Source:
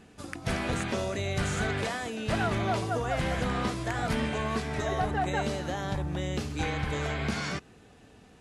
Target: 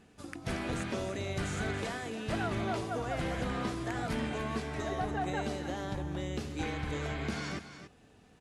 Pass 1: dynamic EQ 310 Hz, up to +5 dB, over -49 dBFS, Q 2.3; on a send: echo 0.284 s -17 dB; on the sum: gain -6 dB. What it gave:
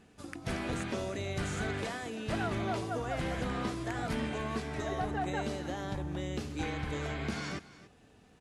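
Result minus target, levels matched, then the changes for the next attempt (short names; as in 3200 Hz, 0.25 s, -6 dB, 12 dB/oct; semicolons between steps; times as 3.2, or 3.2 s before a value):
echo-to-direct -6 dB
change: echo 0.284 s -11 dB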